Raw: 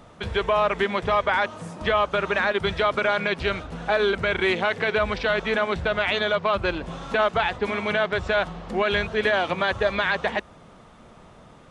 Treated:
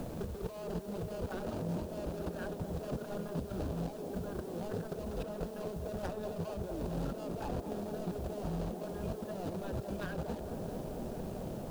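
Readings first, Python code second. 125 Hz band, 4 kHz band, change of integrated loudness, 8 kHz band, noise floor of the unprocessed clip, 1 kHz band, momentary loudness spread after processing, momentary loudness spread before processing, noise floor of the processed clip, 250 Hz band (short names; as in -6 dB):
-4.5 dB, -25.0 dB, -16.0 dB, n/a, -49 dBFS, -20.5 dB, 3 LU, 6 LU, -44 dBFS, -6.5 dB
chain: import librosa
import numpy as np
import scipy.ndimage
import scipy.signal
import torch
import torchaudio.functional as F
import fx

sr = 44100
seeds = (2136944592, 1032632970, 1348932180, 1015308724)

p1 = scipy.ndimage.median_filter(x, 41, mode='constant')
p2 = fx.hum_notches(p1, sr, base_hz=50, count=2)
p3 = fx.over_compress(p2, sr, threshold_db=-39.0, ratio=-1.0)
p4 = fx.peak_eq(p3, sr, hz=2100.0, db=-12.5, octaves=0.56)
p5 = fx.quant_dither(p4, sr, seeds[0], bits=10, dither='triangular')
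p6 = p5 + fx.echo_wet_bandpass(p5, sr, ms=220, feedback_pct=82, hz=430.0, wet_db=-6.5, dry=0)
p7 = fx.band_squash(p6, sr, depth_pct=70)
y = p7 * librosa.db_to_amplitude(-2.5)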